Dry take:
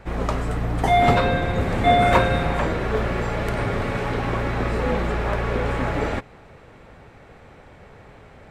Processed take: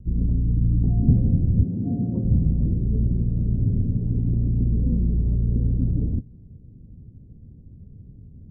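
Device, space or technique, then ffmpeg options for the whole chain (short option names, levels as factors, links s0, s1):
the neighbour's flat through the wall: -filter_complex "[0:a]lowpass=f=240:w=0.5412,lowpass=f=240:w=1.3066,equalizer=f=94:t=o:w=0.77:g=3,asplit=3[s0][s1][s2];[s0]afade=t=out:st=1.63:d=0.02[s3];[s1]highpass=170,afade=t=in:st=1.63:d=0.02,afade=t=out:st=2.24:d=0.02[s4];[s2]afade=t=in:st=2.24:d=0.02[s5];[s3][s4][s5]amix=inputs=3:normalize=0,volume=1.68"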